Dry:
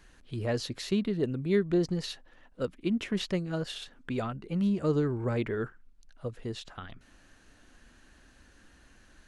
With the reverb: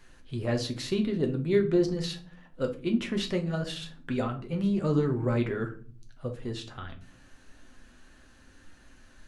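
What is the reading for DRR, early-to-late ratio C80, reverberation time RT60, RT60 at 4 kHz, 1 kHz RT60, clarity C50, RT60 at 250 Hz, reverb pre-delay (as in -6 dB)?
3.0 dB, 19.0 dB, 0.40 s, 0.30 s, 0.35 s, 13.0 dB, 0.85 s, 8 ms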